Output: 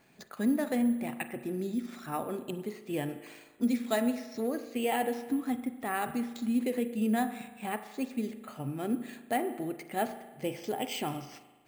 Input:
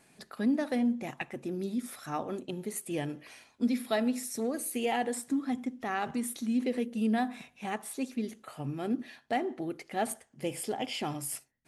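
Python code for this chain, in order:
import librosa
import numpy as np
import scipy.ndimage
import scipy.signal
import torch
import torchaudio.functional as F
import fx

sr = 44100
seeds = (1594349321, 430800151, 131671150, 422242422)

y = fx.rev_spring(x, sr, rt60_s=1.3, pass_ms=(38,), chirp_ms=30, drr_db=11.0)
y = np.repeat(scipy.signal.resample_poly(y, 1, 4), 4)[:len(y)]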